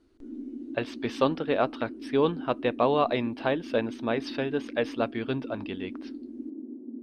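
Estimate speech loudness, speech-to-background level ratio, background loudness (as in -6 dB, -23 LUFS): -29.0 LUFS, 11.0 dB, -40.0 LUFS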